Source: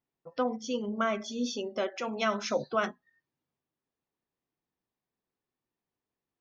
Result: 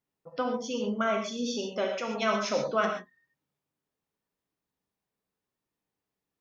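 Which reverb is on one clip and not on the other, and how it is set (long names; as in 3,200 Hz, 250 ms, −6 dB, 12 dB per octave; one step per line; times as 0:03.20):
reverb whose tail is shaped and stops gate 160 ms flat, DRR 1.5 dB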